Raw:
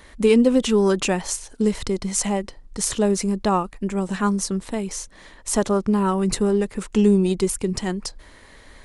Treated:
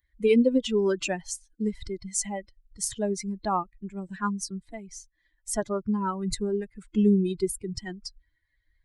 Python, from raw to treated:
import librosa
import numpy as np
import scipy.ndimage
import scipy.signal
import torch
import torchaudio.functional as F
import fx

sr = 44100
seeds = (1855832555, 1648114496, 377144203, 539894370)

y = fx.bin_expand(x, sr, power=2.0)
y = F.gain(torch.from_numpy(y), -2.5).numpy()